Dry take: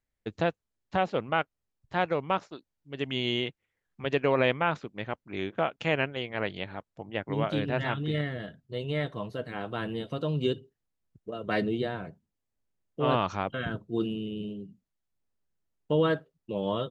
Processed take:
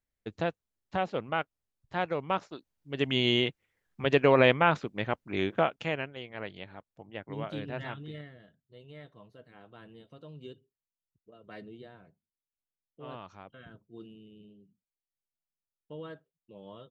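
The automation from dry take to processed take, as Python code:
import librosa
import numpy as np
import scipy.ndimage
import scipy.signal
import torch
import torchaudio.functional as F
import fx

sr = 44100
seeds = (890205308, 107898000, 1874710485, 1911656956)

y = fx.gain(x, sr, db=fx.line((2.13, -3.5), (2.98, 3.5), (5.56, 3.5), (6.04, -8.0), (7.86, -8.0), (8.41, -18.0)))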